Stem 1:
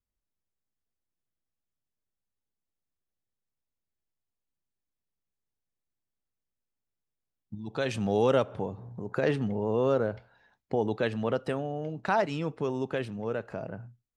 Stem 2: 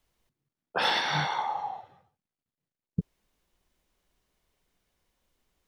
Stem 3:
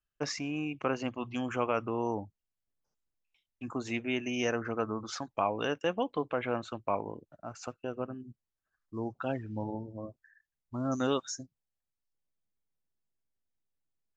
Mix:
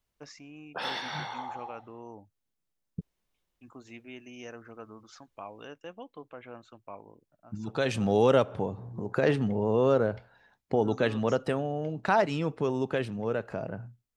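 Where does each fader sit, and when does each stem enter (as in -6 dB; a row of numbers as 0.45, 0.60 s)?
+2.0, -8.0, -13.0 dB; 0.00, 0.00, 0.00 s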